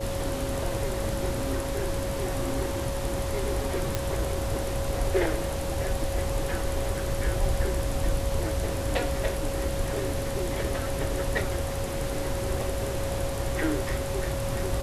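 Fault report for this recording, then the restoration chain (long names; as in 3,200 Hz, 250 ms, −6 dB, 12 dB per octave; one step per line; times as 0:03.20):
whistle 550 Hz −33 dBFS
0:03.95: click −11 dBFS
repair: click removal
notch filter 550 Hz, Q 30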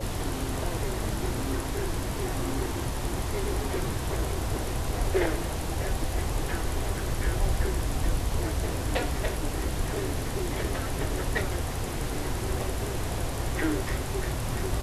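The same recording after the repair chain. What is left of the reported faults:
none of them is left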